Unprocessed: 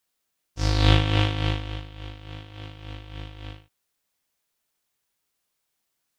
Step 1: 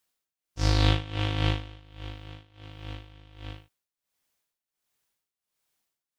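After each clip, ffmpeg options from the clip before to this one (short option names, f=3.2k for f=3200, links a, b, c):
-af "tremolo=f=1.4:d=0.84"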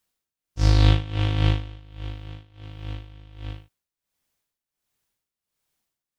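-af "lowshelf=f=240:g=7.5"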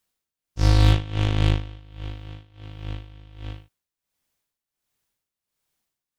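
-af "aeval=exprs='0.447*(cos(1*acos(clip(val(0)/0.447,-1,1)))-cos(1*PI/2))+0.0355*(cos(8*acos(clip(val(0)/0.447,-1,1)))-cos(8*PI/2))':c=same"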